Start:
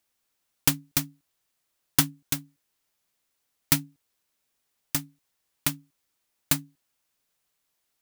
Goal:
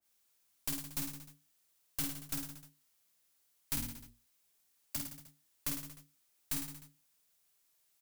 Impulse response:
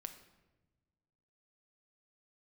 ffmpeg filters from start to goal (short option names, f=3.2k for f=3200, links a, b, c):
-filter_complex "[0:a]highshelf=f=4.5k:g=8,alimiter=limit=-3dB:level=0:latency=1:release=238,aeval=exprs='(tanh(25.1*val(0)+0.45)-tanh(0.45))/25.1':c=same,asplit=3[a][b][c];[a]afade=t=out:st=3.76:d=0.02[d];[b]afreqshift=-44,afade=t=in:st=3.76:d=0.02,afade=t=out:st=4.96:d=0.02[e];[c]afade=t=in:st=4.96:d=0.02[f];[d][e][f]amix=inputs=3:normalize=0,aecho=1:1:50|105|165.5|232|305.3:0.631|0.398|0.251|0.158|0.1,adynamicequalizer=threshold=0.00141:dfrequency=1900:dqfactor=0.7:tfrequency=1900:tqfactor=0.7:attack=5:release=100:ratio=0.375:range=2:mode=cutabove:tftype=highshelf,volume=-3.5dB"